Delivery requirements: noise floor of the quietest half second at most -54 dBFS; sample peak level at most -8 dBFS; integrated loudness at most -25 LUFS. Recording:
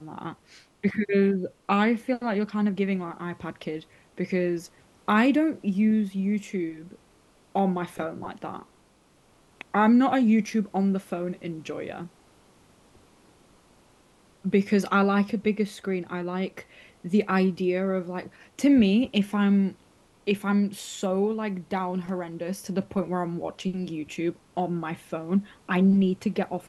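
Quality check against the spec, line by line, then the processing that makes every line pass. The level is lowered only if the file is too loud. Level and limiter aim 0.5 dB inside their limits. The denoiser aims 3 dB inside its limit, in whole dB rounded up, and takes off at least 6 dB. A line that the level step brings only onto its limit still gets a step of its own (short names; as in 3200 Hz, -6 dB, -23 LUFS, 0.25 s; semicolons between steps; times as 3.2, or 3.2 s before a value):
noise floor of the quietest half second -61 dBFS: OK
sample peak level -9.5 dBFS: OK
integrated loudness -26.0 LUFS: OK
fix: none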